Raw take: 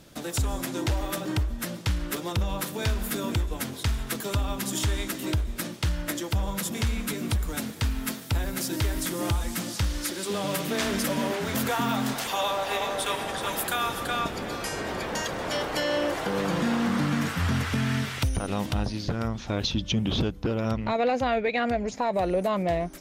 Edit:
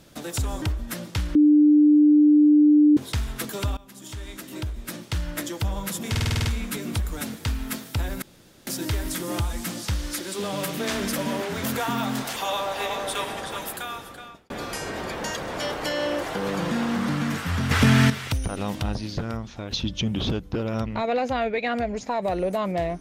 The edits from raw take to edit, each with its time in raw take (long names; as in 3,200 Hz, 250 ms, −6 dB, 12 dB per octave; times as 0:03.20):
0:00.62–0:01.33: remove
0:02.06–0:03.68: beep over 298 Hz −12 dBFS
0:04.48–0:06.04: fade in, from −21.5 dB
0:06.81: stutter 0.05 s, 8 plays
0:08.58: splice in room tone 0.45 s
0:13.16–0:14.41: fade out
0:17.62–0:18.01: clip gain +9.5 dB
0:19.09–0:19.62: fade out, to −8 dB